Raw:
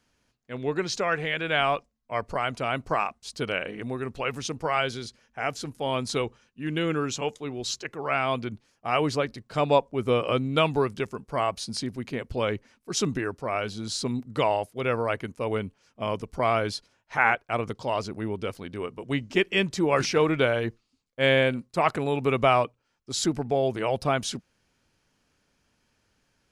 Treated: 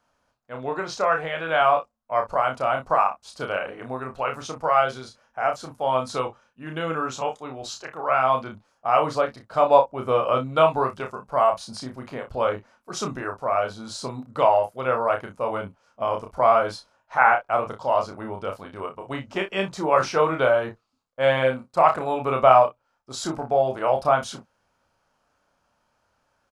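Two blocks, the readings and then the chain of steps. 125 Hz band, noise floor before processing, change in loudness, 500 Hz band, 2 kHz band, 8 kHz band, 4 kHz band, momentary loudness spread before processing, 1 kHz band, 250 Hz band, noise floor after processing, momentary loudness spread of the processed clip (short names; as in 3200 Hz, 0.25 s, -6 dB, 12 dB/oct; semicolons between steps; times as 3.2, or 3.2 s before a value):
-4.0 dB, -73 dBFS, +4.0 dB, +4.5 dB, 0.0 dB, -4.0 dB, -4.0 dB, 10 LU, +7.5 dB, -4.0 dB, -71 dBFS, 16 LU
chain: band shelf 880 Hz +11.5 dB; on a send: early reflections 31 ms -4.5 dB, 59 ms -14.5 dB; on the sum: gain -5.5 dB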